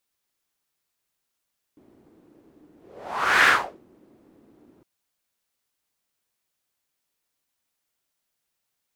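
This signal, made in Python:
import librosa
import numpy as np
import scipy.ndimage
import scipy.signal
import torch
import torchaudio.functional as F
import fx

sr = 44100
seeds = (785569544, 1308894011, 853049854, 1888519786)

y = fx.whoosh(sr, seeds[0], length_s=3.06, peak_s=1.7, rise_s=0.78, fall_s=0.37, ends_hz=310.0, peak_hz=1700.0, q=3.0, swell_db=39.5)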